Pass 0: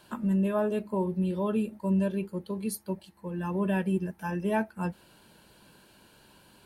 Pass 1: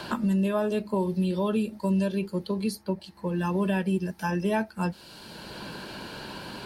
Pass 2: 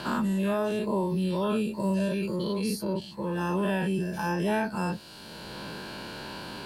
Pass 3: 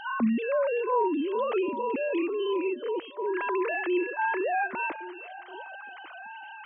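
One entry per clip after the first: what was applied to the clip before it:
peaking EQ 4.7 kHz +12 dB 0.92 oct; three bands compressed up and down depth 70%; trim +2 dB
every event in the spectrogram widened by 120 ms; trim -4.5 dB
formants replaced by sine waves; repeats whose band climbs or falls 380 ms, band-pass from 2.8 kHz, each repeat -1.4 oct, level -10.5 dB

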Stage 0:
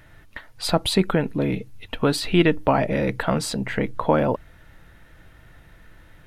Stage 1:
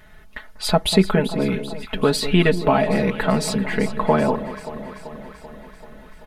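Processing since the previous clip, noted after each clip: comb 4.7 ms, depth 82%; on a send: echo whose repeats swap between lows and highs 193 ms, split 1.1 kHz, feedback 79%, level -11.5 dB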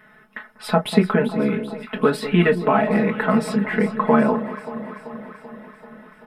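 reverberation, pre-delay 3 ms, DRR 5.5 dB; trim -8.5 dB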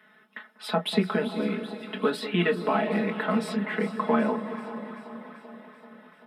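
steep high-pass 170 Hz 48 dB/octave; peaking EQ 3.5 kHz +8 dB 0.69 oct; echo that smears into a reverb 451 ms, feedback 41%, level -14.5 dB; trim -7.5 dB

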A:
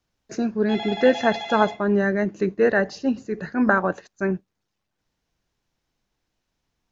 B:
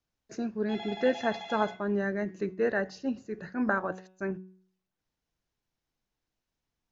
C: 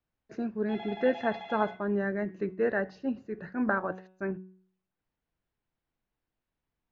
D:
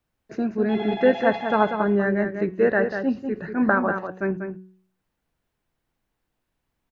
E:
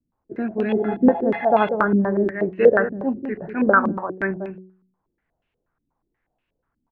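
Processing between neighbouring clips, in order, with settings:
de-hum 186.6 Hz, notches 20; trim -9 dB
low-pass 2.7 kHz 12 dB/octave
echo from a far wall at 33 m, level -7 dB; trim +8 dB
step-sequenced low-pass 8.3 Hz 260–2700 Hz; trim -1 dB

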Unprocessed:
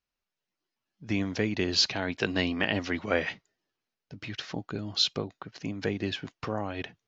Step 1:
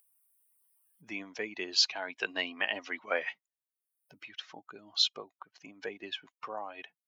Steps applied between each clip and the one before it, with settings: expander on every frequency bin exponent 1.5; high-pass 580 Hz 12 dB/octave; upward compressor, threshold -47 dBFS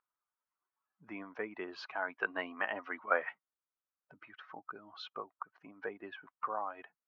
resonant low-pass 1.3 kHz, resonance Q 2.9; trim -2.5 dB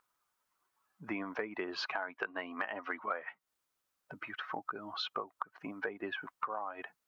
compression 16:1, threshold -45 dBFS, peak gain reduction 22 dB; trim +11.5 dB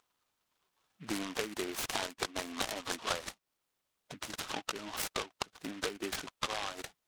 delay time shaken by noise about 2 kHz, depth 0.15 ms; trim +1.5 dB

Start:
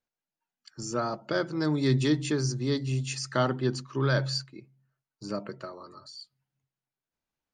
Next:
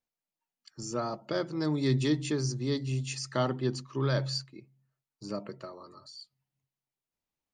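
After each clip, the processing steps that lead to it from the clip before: peaking EQ 1.5 kHz -7 dB 0.26 oct; trim -2.5 dB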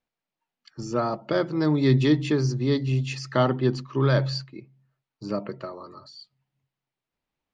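low-pass 3.6 kHz 12 dB/octave; trim +7.5 dB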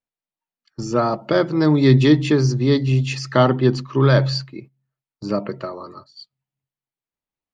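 gate -45 dBFS, range -15 dB; trim +6.5 dB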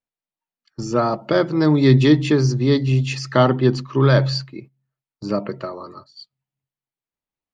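no audible change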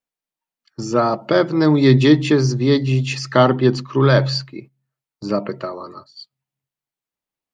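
bass shelf 110 Hz -7 dB; trim +2.5 dB

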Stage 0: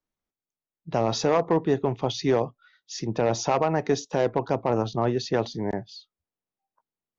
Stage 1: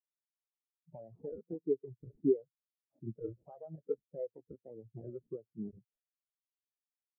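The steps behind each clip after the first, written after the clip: decimation with a swept rate 33×, swing 100% 1.6 Hz; compression 8:1, threshold -26 dBFS, peak gain reduction 10 dB; spectral contrast expander 4:1; trim -4.5 dB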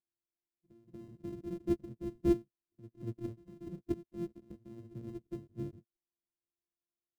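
sorted samples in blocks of 128 samples; FFT filter 220 Hz 0 dB, 390 Hz -3 dB, 820 Hz -22 dB; pre-echo 237 ms -12.5 dB; trim +4 dB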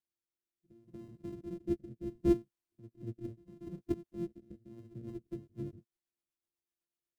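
rotary cabinet horn 0.7 Hz, later 8 Hz, at 4.55 s; trim +1 dB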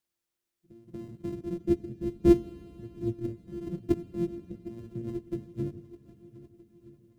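shuffle delay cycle 1268 ms, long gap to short 1.5:1, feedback 45%, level -19 dB; on a send at -16 dB: reverberation RT60 3.9 s, pre-delay 3 ms; on the sum: trim +8 dB

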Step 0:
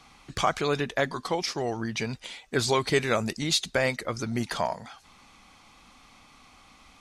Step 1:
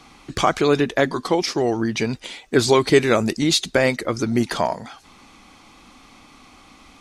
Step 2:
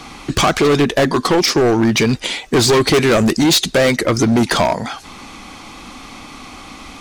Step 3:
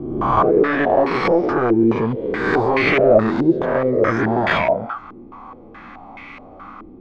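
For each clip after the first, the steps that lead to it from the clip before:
peaking EQ 320 Hz +7.5 dB 1 oct; trim +5.5 dB
in parallel at 0 dB: compression, threshold -25 dBFS, peak gain reduction 15 dB; on the sum: hard clipper -16.5 dBFS, distortion -7 dB; trim +7 dB
reverse spectral sustain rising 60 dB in 1.32 s; flange 0.55 Hz, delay 7.7 ms, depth 3.5 ms, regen -38%; step-sequenced low-pass 4.7 Hz 370–2200 Hz; trim -5 dB

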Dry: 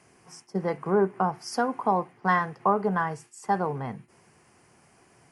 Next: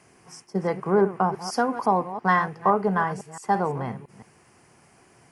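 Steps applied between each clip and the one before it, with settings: chunks repeated in reverse 169 ms, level -12.5 dB; trim +2.5 dB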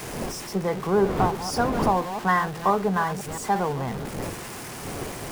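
jump at every zero crossing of -29.5 dBFS; wind noise 480 Hz -32 dBFS; trim -2 dB

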